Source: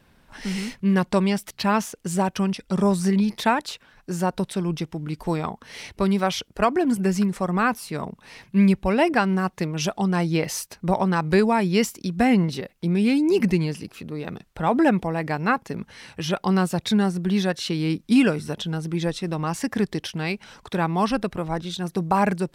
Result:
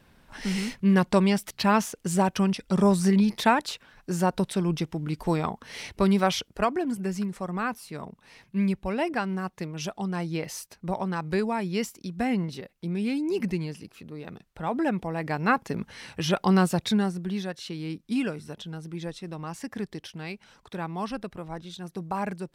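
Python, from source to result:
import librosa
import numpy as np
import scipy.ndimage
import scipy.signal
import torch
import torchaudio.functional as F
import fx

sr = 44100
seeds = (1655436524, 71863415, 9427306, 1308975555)

y = fx.gain(x, sr, db=fx.line((6.33, -0.5), (6.92, -8.0), (14.86, -8.0), (15.63, 0.0), (16.69, 0.0), (17.45, -10.0)))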